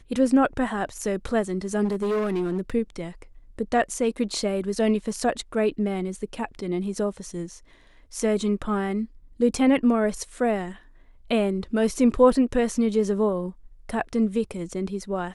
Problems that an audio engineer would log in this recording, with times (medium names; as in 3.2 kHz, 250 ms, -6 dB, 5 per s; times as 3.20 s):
1.84–2.75 s: clipped -21.5 dBFS